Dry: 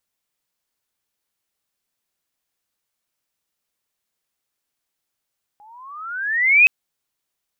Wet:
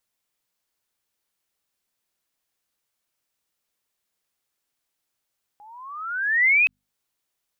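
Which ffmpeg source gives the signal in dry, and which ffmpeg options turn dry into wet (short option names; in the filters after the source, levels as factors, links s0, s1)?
-f lavfi -i "aevalsrc='pow(10,(-6.5+38*(t/1.07-1))/20)*sin(2*PI*814*1.07/(20*log(2)/12)*(exp(20*log(2)/12*t/1.07)-1))':d=1.07:s=44100"
-filter_complex "[0:a]acrossover=split=4200[s0][s1];[s1]acompressor=threshold=0.0158:ratio=4:attack=1:release=60[s2];[s0][s2]amix=inputs=2:normalize=0,bandreject=f=50:t=h:w=6,bandreject=f=100:t=h:w=6,bandreject=f=150:t=h:w=6,bandreject=f=200:t=h:w=6,bandreject=f=250:t=h:w=6,alimiter=limit=0.188:level=0:latency=1:release=245"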